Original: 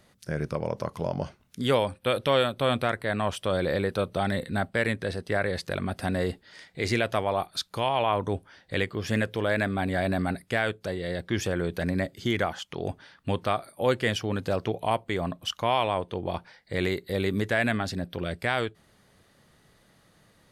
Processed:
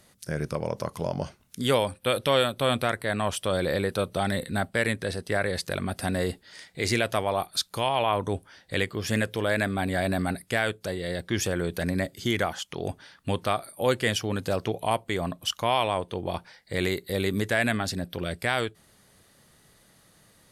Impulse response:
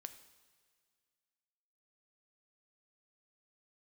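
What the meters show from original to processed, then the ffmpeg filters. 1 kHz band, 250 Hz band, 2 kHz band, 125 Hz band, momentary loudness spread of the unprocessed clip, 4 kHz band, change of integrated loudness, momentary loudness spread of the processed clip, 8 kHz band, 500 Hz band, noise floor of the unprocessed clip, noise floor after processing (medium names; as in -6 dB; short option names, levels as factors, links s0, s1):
0.0 dB, 0.0 dB, +1.0 dB, 0.0 dB, 8 LU, +2.5 dB, +0.5 dB, 8 LU, +7.5 dB, 0.0 dB, -63 dBFS, -60 dBFS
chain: -af "equalizer=f=11000:w=0.45:g=9.5"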